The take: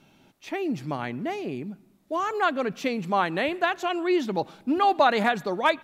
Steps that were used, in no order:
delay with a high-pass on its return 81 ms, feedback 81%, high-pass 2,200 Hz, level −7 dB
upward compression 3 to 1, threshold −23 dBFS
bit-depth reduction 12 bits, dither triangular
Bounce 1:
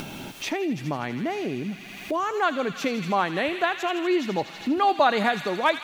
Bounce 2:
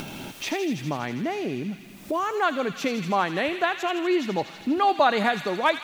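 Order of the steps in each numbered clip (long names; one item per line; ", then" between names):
delay with a high-pass on its return, then bit-depth reduction, then upward compression
bit-depth reduction, then upward compression, then delay with a high-pass on its return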